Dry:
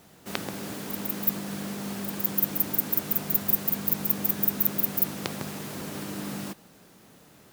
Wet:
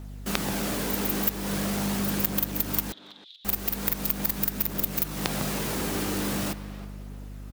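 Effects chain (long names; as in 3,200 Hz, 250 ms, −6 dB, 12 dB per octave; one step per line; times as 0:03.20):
phase shifter 0.42 Hz, delay 2.7 ms, feedback 23%
in parallel at −4.5 dB: log-companded quantiser 2 bits
on the sum: downward compressor 12 to 1, threshold −20 dBFS, peak gain reduction 13 dB
on a send at −17 dB: convolution reverb RT60 5.0 s, pre-delay 82 ms
on the sum: mains hum 50 Hz, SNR 10 dB
0:02.92–0:03.45: flat-topped band-pass 3,600 Hz, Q 5.2
far-end echo of a speakerphone 320 ms, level −14 dB
level −1 dB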